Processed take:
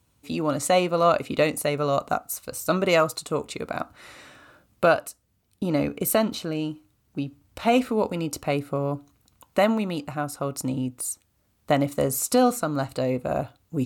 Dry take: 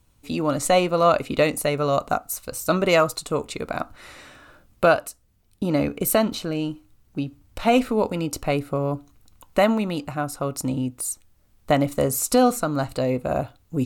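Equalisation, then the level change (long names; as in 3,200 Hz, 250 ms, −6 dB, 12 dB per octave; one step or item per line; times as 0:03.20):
high-pass filter 76 Hz
−2.0 dB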